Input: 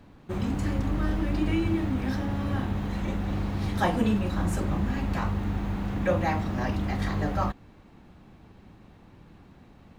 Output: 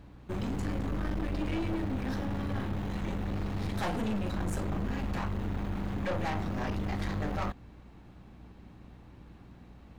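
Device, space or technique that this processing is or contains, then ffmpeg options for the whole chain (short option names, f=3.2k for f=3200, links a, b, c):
valve amplifier with mains hum: -af "aeval=exprs='(tanh(28.2*val(0)+0.5)-tanh(0.5))/28.2':c=same,aeval=exprs='val(0)+0.00224*(sin(2*PI*60*n/s)+sin(2*PI*2*60*n/s)/2+sin(2*PI*3*60*n/s)/3+sin(2*PI*4*60*n/s)/4+sin(2*PI*5*60*n/s)/5)':c=same"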